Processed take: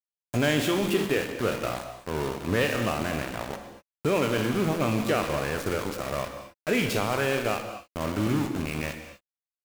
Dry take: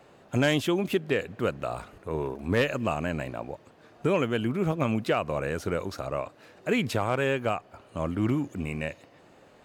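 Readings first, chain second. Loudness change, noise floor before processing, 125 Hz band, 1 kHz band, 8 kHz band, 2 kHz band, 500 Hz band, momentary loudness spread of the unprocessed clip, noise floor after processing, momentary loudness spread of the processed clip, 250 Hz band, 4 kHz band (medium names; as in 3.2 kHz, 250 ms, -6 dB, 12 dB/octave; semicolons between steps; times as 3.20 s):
+1.0 dB, -56 dBFS, 0.0 dB, +1.5 dB, +7.5 dB, +2.0 dB, +0.5 dB, 10 LU, under -85 dBFS, 11 LU, +1.0 dB, +3.5 dB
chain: spectral sustain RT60 0.36 s; in parallel at +1 dB: peak limiter -22 dBFS, peak gain reduction 10.5 dB; on the sum: small samples zeroed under -25 dBFS; gated-style reverb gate 270 ms flat, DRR 6.5 dB; trim -4.5 dB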